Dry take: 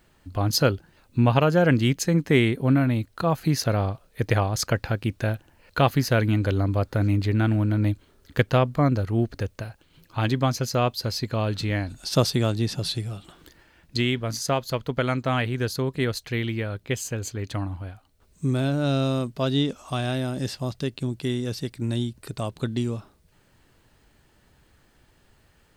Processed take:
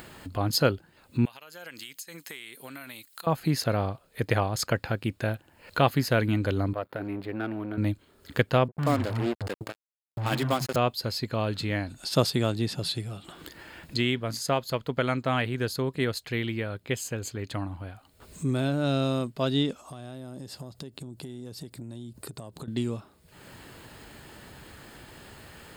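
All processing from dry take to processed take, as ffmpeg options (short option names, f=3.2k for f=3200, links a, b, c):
-filter_complex "[0:a]asettb=1/sr,asplit=3[a][b][c];[a]atrim=end=1.254[d];[b]atrim=start=1.25:end=3.27,asetpts=PTS-STARTPTS,afade=t=in:d=0.004:c=qsin,afade=t=out:st=2.016:d=0.004:c=qsin,aderivative,acompressor=threshold=-42dB:ratio=4:attack=3.2:release=140:knee=1:detection=peak[e];[c]atrim=start=3.266[f];[d][e]acrossfade=d=0.004:c1=hsin:c2=qsin[g];[g][f]acrossfade=d=0.004:c1=qsin:c2=hsin,asettb=1/sr,asplit=3[h][i][j];[h]atrim=end=6.734[k];[i]atrim=start=6.73:end=7.78,asetpts=PTS-STARTPTS,afade=t=in:d=0.004:c=qsin,afade=t=out:st=1.046:d=0.004:c=qsin,aeval=exprs='if(lt(val(0),0),0.251*val(0),val(0))':c=same,highpass=f=300:p=1,equalizer=f=6.8k:w=0.72:g=-13.5[l];[j]atrim=start=7.776[m];[k][l]acrossfade=d=0.004:c1=hsin:c2=qsin[n];[n][m]acrossfade=d=0.004:c1=qsin:c2=hsin,asettb=1/sr,asplit=3[o][p][q];[o]atrim=end=8.684[r];[p]atrim=start=8.68:end=10.76,asetpts=PTS-STARTPTS,afade=t=in:d=0.004:c=qsin,afade=t=out:st=2.076:d=0.004:c=qsin,acrossover=split=200[s][t];[t]adelay=80[u];[s][u]amix=inputs=2:normalize=0,atrim=end_sample=91728,acrusher=bits=4:mix=0:aa=0.5[v];[q]atrim=start=10.756[w];[r][v]acrossfade=d=0.004:c1=hsin:c2=qsin[x];[x][w]acrossfade=d=0.004:c1=qsin:c2=hsin,asettb=1/sr,asplit=3[y][z][aa];[y]atrim=end=19.814[ab];[z]atrim=start=19.81:end=22.68,asetpts=PTS-STARTPTS,afade=t=in:d=0.004:c=qsin,afade=t=out:st=2.866:d=0.004:c=qsin,highpass=42,equalizer=f=2.3k:w=0.73:g=-9,acompressor=threshold=-38dB:ratio=6:attack=3.2:release=140:knee=1:detection=peak[ac];[aa]atrim=start=22.676[ad];[ab][ac]acrossfade=d=0.004:c1=hsin:c2=qsin[ae];[ae][ad]acrossfade=d=0.004:c1=qsin:c2=hsin,highpass=f=120:p=1,bandreject=f=5.9k:w=6.4,acompressor=mode=upward:threshold=-31dB:ratio=2.5,volume=-1.5dB"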